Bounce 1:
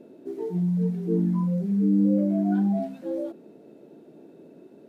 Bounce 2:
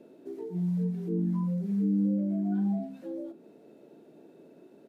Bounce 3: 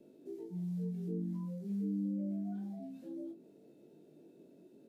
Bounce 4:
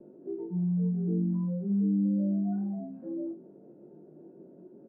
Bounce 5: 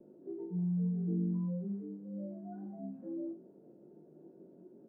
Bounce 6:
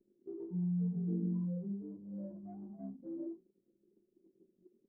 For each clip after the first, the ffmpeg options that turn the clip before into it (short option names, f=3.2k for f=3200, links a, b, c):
-filter_complex "[0:a]lowshelf=f=490:g=-5.5,acrossover=split=390[a][b];[b]acompressor=threshold=-44dB:ratio=6[c];[a][c]amix=inputs=2:normalize=0,asplit=2[d][e];[e]adelay=45,volume=-13dB[f];[d][f]amix=inputs=2:normalize=0,volume=-1.5dB"
-filter_complex "[0:a]equalizer=f=1.2k:t=o:w=2.5:g=-12,acrossover=split=370[a][b];[a]acompressor=threshold=-38dB:ratio=6[c];[c][b]amix=inputs=2:normalize=0,flanger=delay=20:depth=2.1:speed=0.51,volume=1dB"
-af "lowpass=f=1.3k:w=0.5412,lowpass=f=1.3k:w=1.3066,aecho=1:1:5.5:0.33,volume=7.5dB"
-af "bandreject=f=49.79:t=h:w=4,bandreject=f=99.58:t=h:w=4,bandreject=f=149.37:t=h:w=4,bandreject=f=199.16:t=h:w=4,bandreject=f=248.95:t=h:w=4,bandreject=f=298.74:t=h:w=4,bandreject=f=348.53:t=h:w=4,bandreject=f=398.32:t=h:w=4,bandreject=f=448.11:t=h:w=4,bandreject=f=497.9:t=h:w=4,bandreject=f=547.69:t=h:w=4,bandreject=f=597.48:t=h:w=4,bandreject=f=647.27:t=h:w=4,bandreject=f=697.06:t=h:w=4,bandreject=f=746.85:t=h:w=4,bandreject=f=796.64:t=h:w=4,bandreject=f=846.43:t=h:w=4,bandreject=f=896.22:t=h:w=4,bandreject=f=946.01:t=h:w=4,bandreject=f=995.8:t=h:w=4,bandreject=f=1.04559k:t=h:w=4,bandreject=f=1.09538k:t=h:w=4,bandreject=f=1.14517k:t=h:w=4,bandreject=f=1.19496k:t=h:w=4,bandreject=f=1.24475k:t=h:w=4,bandreject=f=1.29454k:t=h:w=4,bandreject=f=1.34433k:t=h:w=4,bandreject=f=1.39412k:t=h:w=4,bandreject=f=1.44391k:t=h:w=4,bandreject=f=1.4937k:t=h:w=4,bandreject=f=1.54349k:t=h:w=4,bandreject=f=1.59328k:t=h:w=4,volume=-4.5dB"
-af "anlmdn=0.1,flanger=delay=4.1:depth=7:regen=-71:speed=1.4:shape=triangular,volume=2.5dB"